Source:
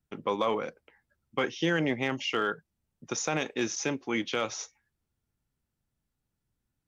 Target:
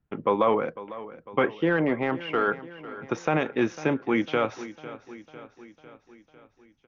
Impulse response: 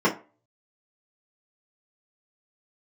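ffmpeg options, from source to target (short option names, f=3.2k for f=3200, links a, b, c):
-filter_complex "[0:a]lowpass=1.9k,asettb=1/sr,asplit=3[a][b][c];[a]atrim=end=1.464[d];[b]atrim=start=1.46:end=2.48,asetpts=PTS-STARTPTS,afade=t=in:d=0.004:c=qsin,afade=t=out:st=1.016:d=0.004:c=qsin,asplit=2[e][f];[f]highpass=f=720:p=1,volume=8dB,asoftclip=type=tanh:threshold=-17dB[g];[e][g]amix=inputs=2:normalize=0,lowpass=f=1.1k:p=1,volume=-6dB[h];[c]atrim=start=2.476[i];[d][h]acrossfade=d=0.004:c1=hsin:c2=qsin[j];[j][i]acrossfade=d=0.004:c1=qsin:c2=hsin,asplit=2[k][l];[l]aecho=0:1:501|1002|1503|2004|2505|3006:0.158|0.0919|0.0533|0.0309|0.0179|0.0104[m];[k][m]amix=inputs=2:normalize=0,volume=6.5dB"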